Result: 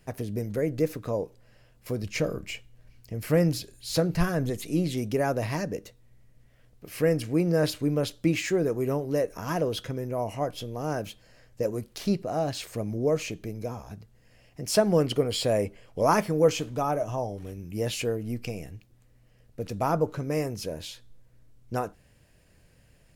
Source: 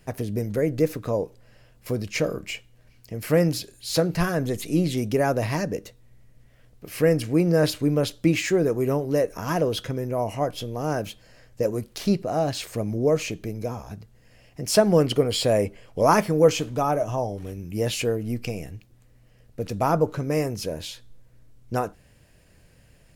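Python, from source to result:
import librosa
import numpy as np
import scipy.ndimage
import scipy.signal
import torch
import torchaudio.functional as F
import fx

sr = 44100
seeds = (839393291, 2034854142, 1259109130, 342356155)

y = fx.low_shelf(x, sr, hz=130.0, db=7.5, at=(2.03, 4.5))
y = y * librosa.db_to_amplitude(-4.0)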